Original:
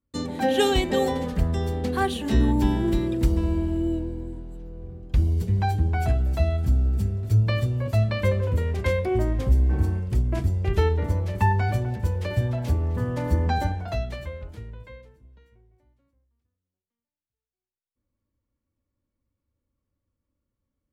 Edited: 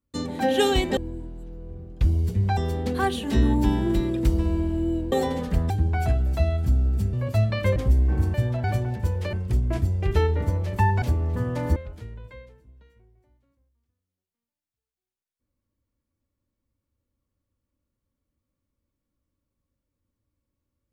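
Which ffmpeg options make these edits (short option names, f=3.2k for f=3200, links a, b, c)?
-filter_complex "[0:a]asplit=12[a][b][c][d][e][f][g][h][i][j][k][l];[a]atrim=end=0.972[m];[b]atrim=start=4.098:end=5.702[n];[c]atrim=start=1.548:end=4.102[o];[d]atrim=start=0.968:end=1.552[p];[e]atrim=start=5.698:end=7.132[q];[f]atrim=start=7.718:end=8.352[r];[g]atrim=start=9.368:end=9.952[s];[h]atrim=start=12.328:end=12.632[t];[i]atrim=start=11.638:end=12.332[u];[j]atrim=start=9.948:end=11.642[v];[k]atrim=start=12.628:end=13.372[w];[l]atrim=start=14.318[x];[m][n]acrossfade=d=0.004:c1=hsin:c2=hsin[y];[y][o]acrossfade=d=0.004:c1=hsin:c2=hsin[z];[z][p]acrossfade=d=0.004:c1=hsin:c2=hsin[aa];[aa][q]acrossfade=d=0.004:c1=hsin:c2=hsin[ab];[ab][r]acrossfade=d=0.004:c1=hsin:c2=hsin[ac];[ac][s]acrossfade=d=0.004:c1=hsin:c2=hsin[ad];[ad][t]acrossfade=d=0.004:c1=hsin:c2=hsin[ae];[ae][u]acrossfade=d=0.004:c1=hsin:c2=hsin[af];[af][v]acrossfade=d=0.004:c1=hsin:c2=hsin[ag];[ag][w]acrossfade=d=0.004:c1=hsin:c2=hsin[ah];[ah][x]acrossfade=d=0.004:c1=hsin:c2=hsin"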